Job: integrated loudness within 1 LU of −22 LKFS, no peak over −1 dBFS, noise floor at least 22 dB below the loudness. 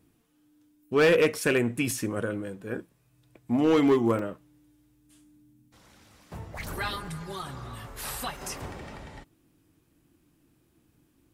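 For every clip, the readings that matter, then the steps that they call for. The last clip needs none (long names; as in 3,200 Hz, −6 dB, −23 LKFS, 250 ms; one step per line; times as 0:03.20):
share of clipped samples 0.6%; peaks flattened at −16.0 dBFS; number of dropouts 5; longest dropout 2.6 ms; integrated loudness −27.5 LKFS; sample peak −16.0 dBFS; target loudness −22.0 LKFS
→ clipped peaks rebuilt −16 dBFS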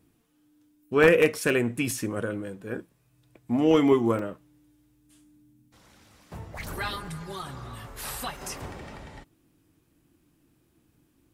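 share of clipped samples 0.0%; number of dropouts 5; longest dropout 2.6 ms
→ repair the gap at 0:01.36/0:01.91/0:04.19/0:07.07/0:08.37, 2.6 ms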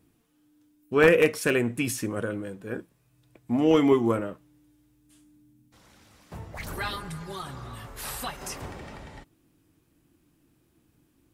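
number of dropouts 0; integrated loudness −26.5 LKFS; sample peak −7.0 dBFS; target loudness −22.0 LKFS
→ level +4.5 dB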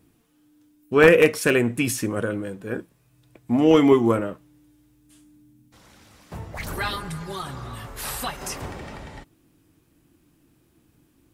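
integrated loudness −22.0 LKFS; sample peak −2.5 dBFS; background noise floor −63 dBFS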